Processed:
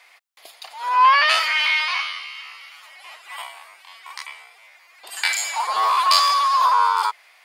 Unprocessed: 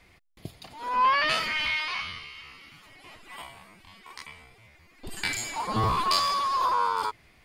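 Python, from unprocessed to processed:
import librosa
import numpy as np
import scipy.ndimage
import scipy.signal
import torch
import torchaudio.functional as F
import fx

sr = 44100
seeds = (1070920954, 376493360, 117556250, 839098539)

y = scipy.signal.sosfilt(scipy.signal.butter(4, 690.0, 'highpass', fs=sr, output='sos'), x)
y = F.gain(torch.from_numpy(y), 8.5).numpy()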